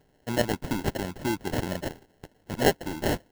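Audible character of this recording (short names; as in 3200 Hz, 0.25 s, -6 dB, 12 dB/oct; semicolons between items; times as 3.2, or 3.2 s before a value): aliases and images of a low sample rate 1200 Hz, jitter 0%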